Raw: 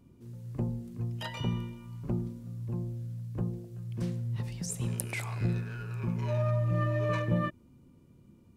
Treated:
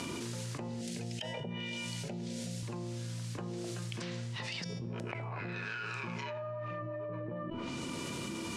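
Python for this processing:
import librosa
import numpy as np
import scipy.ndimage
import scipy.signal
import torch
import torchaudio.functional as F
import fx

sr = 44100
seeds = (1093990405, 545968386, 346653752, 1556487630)

y = fx.weighting(x, sr, curve='ITU-R 468')
y = fx.env_lowpass_down(y, sr, base_hz=340.0, full_db=-30.0)
y = fx.high_shelf(y, sr, hz=4100.0, db=-8.0)
y = fx.comb_fb(y, sr, f0_hz=330.0, decay_s=0.89, harmonics='all', damping=0.0, mix_pct=70)
y = fx.fixed_phaser(y, sr, hz=300.0, stages=6, at=(0.81, 2.63))
y = fx.env_flatten(y, sr, amount_pct=100)
y = y * 10.0 ** (7.0 / 20.0)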